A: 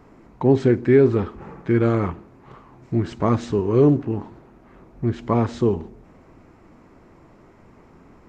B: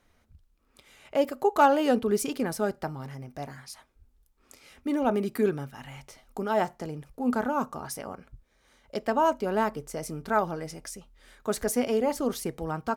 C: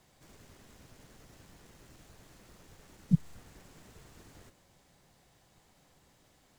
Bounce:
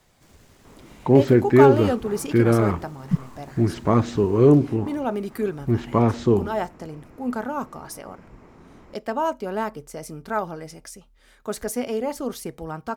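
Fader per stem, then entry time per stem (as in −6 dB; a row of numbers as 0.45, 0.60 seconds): +1.0, −0.5, +3.0 decibels; 0.65, 0.00, 0.00 seconds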